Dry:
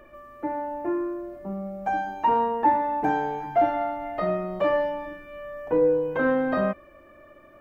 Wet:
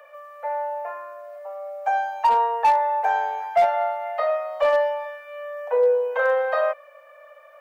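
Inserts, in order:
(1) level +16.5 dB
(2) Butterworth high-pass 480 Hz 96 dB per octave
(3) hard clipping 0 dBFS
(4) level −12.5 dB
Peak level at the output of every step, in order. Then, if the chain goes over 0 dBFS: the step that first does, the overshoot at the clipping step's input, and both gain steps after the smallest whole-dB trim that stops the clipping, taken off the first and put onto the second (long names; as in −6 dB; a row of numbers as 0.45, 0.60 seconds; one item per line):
+7.0, +5.0, 0.0, −12.5 dBFS
step 1, 5.0 dB
step 1 +11.5 dB, step 4 −7.5 dB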